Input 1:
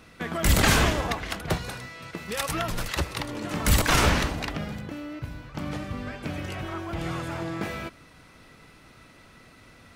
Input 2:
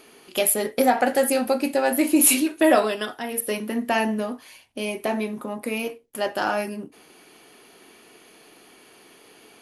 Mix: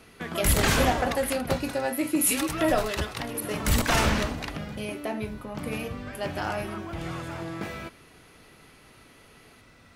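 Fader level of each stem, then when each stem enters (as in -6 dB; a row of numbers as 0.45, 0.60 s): -3.0, -7.0 dB; 0.00, 0.00 s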